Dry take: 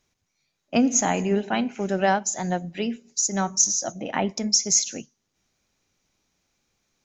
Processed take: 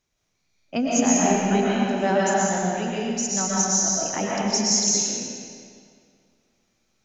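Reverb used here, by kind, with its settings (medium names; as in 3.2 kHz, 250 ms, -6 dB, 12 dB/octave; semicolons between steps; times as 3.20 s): algorithmic reverb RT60 2.2 s, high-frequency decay 0.85×, pre-delay 85 ms, DRR -6.5 dB; trim -5 dB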